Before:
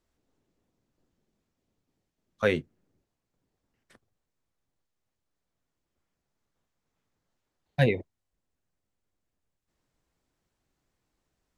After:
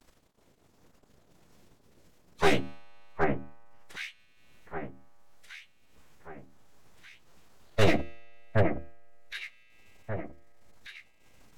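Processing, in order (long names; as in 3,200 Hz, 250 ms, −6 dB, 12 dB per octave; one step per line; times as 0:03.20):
half-wave rectification
tuned comb filter 150 Hz, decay 1.8 s, mix 40%
on a send: delay that swaps between a low-pass and a high-pass 768 ms, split 1,800 Hz, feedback 53%, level −4.5 dB
on the sum: gain into a clipping stage and back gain 23 dB
mains-hum notches 50/100/150/200/250/300/350/400/450 Hz
in parallel at +2 dB: upward compression, threshold −46 dBFS
on the sum: phase-vocoder pitch shift with formants kept −4.5 semitones
downward expander −59 dBFS
level +5 dB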